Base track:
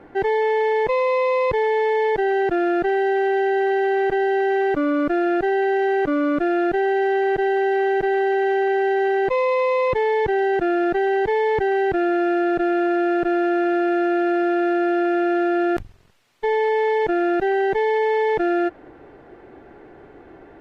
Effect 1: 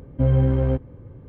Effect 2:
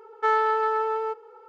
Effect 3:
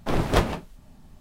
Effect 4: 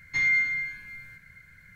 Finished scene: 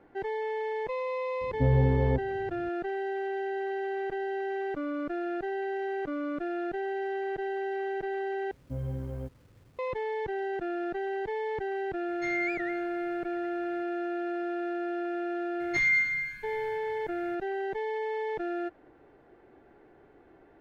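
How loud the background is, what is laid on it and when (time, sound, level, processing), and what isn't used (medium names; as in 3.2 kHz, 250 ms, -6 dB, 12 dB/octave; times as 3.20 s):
base track -13 dB
1.41 s: add 1 -5.5 dB + low-pass 1.2 kHz 24 dB/octave
8.51 s: replace with 1 -16.5 dB + bit crusher 8-bit
12.08 s: add 4 -9.5 dB + warped record 78 rpm, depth 250 cents
15.60 s: add 4 -1.5 dB
not used: 2, 3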